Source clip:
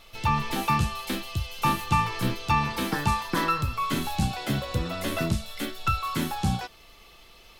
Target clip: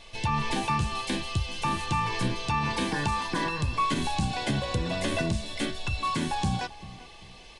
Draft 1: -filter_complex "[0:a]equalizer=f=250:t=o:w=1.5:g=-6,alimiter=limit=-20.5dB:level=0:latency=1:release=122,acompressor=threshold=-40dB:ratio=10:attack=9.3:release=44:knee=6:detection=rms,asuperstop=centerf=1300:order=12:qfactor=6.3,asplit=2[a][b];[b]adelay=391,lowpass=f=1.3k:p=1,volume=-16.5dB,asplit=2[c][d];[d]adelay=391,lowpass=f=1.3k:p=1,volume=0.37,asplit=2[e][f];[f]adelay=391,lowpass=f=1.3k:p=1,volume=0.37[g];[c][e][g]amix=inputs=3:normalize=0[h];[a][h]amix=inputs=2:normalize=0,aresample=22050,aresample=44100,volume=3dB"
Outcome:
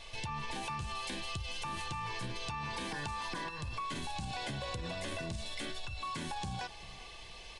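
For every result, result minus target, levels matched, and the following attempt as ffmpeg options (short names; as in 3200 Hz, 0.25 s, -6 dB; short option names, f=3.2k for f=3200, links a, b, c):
compressor: peak gain reduction +15 dB; 250 Hz band -3.5 dB
-filter_complex "[0:a]equalizer=f=250:t=o:w=1.5:g=-6,alimiter=limit=-20.5dB:level=0:latency=1:release=122,asuperstop=centerf=1300:order=12:qfactor=6.3,asplit=2[a][b];[b]adelay=391,lowpass=f=1.3k:p=1,volume=-16.5dB,asplit=2[c][d];[d]adelay=391,lowpass=f=1.3k:p=1,volume=0.37,asplit=2[e][f];[f]adelay=391,lowpass=f=1.3k:p=1,volume=0.37[g];[c][e][g]amix=inputs=3:normalize=0[h];[a][h]amix=inputs=2:normalize=0,aresample=22050,aresample=44100,volume=3dB"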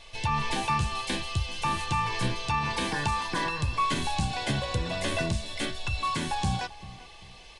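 250 Hz band -3.0 dB
-filter_complex "[0:a]alimiter=limit=-20.5dB:level=0:latency=1:release=122,asuperstop=centerf=1300:order=12:qfactor=6.3,asplit=2[a][b];[b]adelay=391,lowpass=f=1.3k:p=1,volume=-16.5dB,asplit=2[c][d];[d]adelay=391,lowpass=f=1.3k:p=1,volume=0.37,asplit=2[e][f];[f]adelay=391,lowpass=f=1.3k:p=1,volume=0.37[g];[c][e][g]amix=inputs=3:normalize=0[h];[a][h]amix=inputs=2:normalize=0,aresample=22050,aresample=44100,volume=3dB"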